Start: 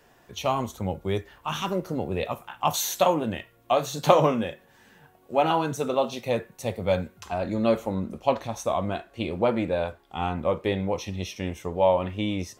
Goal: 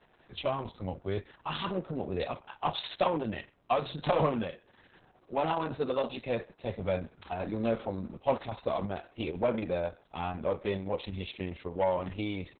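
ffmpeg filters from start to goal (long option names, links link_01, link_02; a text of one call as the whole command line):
ffmpeg -i in.wav -filter_complex "[0:a]aeval=exprs='(tanh(4.47*val(0)+0.05)-tanh(0.05))/4.47':channel_layout=same,asplit=2[link_01][link_02];[link_02]adelay=130,highpass=300,lowpass=3400,asoftclip=type=hard:threshold=-22.5dB,volume=-23dB[link_03];[link_01][link_03]amix=inputs=2:normalize=0,volume=-3.5dB" -ar 48000 -c:a libopus -b:a 6k out.opus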